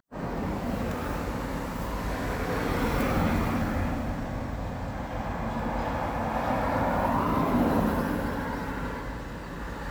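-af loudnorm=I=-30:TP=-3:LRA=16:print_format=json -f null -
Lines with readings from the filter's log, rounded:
"input_i" : "-29.4",
"input_tp" : "-12.5",
"input_lra" : "2.8",
"input_thresh" : "-39.4",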